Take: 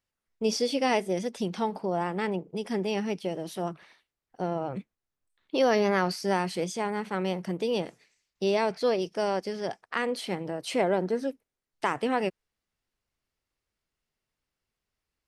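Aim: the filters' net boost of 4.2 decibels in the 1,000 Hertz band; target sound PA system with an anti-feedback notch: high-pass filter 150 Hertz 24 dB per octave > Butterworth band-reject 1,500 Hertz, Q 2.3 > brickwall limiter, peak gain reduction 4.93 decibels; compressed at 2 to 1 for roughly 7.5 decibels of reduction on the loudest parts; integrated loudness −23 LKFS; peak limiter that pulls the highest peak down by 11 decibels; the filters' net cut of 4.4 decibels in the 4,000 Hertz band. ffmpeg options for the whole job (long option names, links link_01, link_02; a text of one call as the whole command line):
ffmpeg -i in.wav -af "equalizer=frequency=1000:width_type=o:gain=6,equalizer=frequency=4000:width_type=o:gain=-6.5,acompressor=threshold=-32dB:ratio=2,alimiter=level_in=1dB:limit=-24dB:level=0:latency=1,volume=-1dB,highpass=frequency=150:width=0.5412,highpass=frequency=150:width=1.3066,asuperstop=centerf=1500:order=8:qfactor=2.3,volume=15.5dB,alimiter=limit=-12.5dB:level=0:latency=1" out.wav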